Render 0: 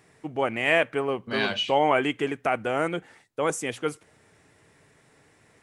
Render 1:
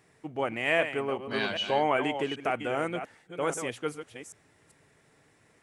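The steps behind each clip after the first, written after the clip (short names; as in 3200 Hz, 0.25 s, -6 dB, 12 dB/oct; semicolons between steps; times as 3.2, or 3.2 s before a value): reverse delay 0.393 s, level -9 dB; gain -4.5 dB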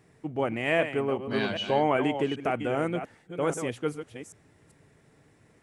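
low shelf 470 Hz +9.5 dB; gain -2 dB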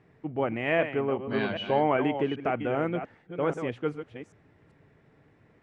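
LPF 2800 Hz 12 dB/oct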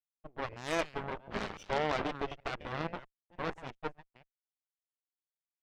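crossover distortion -45.5 dBFS; added harmonics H 3 -25 dB, 4 -16 dB, 7 -19 dB, 8 -20 dB, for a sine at -12.5 dBFS; gain -6.5 dB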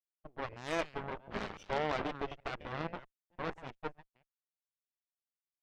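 gate -55 dBFS, range -10 dB; high shelf 7100 Hz -7 dB; gain -2 dB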